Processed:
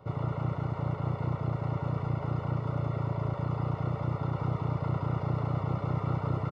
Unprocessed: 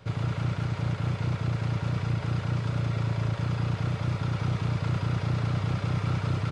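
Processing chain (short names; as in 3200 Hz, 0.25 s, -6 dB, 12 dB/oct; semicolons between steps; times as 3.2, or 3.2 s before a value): polynomial smoothing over 65 samples; tilt +2 dB/oct; doubler 14 ms -11 dB; gain +3 dB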